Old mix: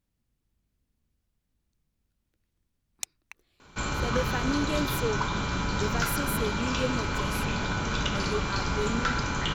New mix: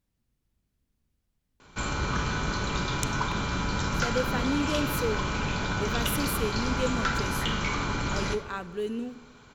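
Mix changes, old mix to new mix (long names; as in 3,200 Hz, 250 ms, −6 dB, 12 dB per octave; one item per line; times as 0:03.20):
speech: send on
background: entry −2.00 s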